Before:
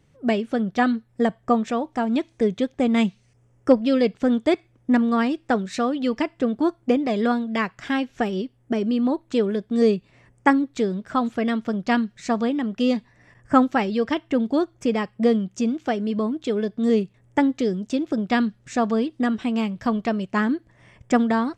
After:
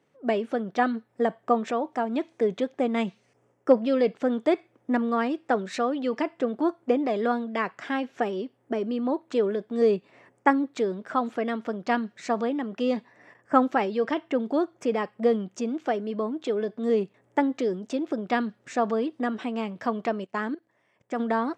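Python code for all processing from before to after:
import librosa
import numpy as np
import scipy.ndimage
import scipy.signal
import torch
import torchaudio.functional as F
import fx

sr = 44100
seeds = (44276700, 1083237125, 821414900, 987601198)

y = fx.chain(x, sr, fx.high_shelf(hz=3800.0, db=5.5),
    fx.level_steps(step_db=23), at=(20.24, 21.2))
y = fx.high_shelf(y, sr, hz=2400.0, db=-11.5)
y = fx.transient(y, sr, attack_db=0, sustain_db=6)
y = scipy.signal.sosfilt(scipy.signal.butter(2, 350.0, 'highpass', fs=sr, output='sos'), y)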